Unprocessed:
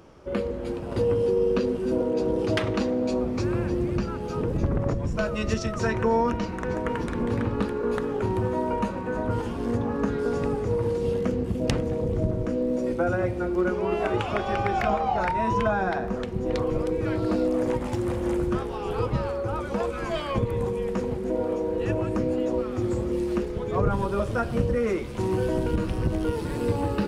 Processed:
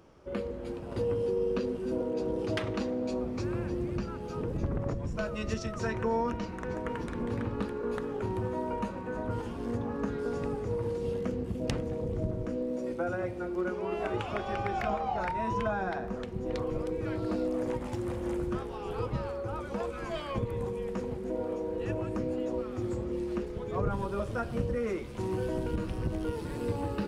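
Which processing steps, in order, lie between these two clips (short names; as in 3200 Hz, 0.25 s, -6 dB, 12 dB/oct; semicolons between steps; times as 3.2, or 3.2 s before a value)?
12.63–13.97 low shelf 110 Hz -8 dB; 22.95–23.45 LPF 4700 Hz -> 8200 Hz 6 dB/oct; gain -7 dB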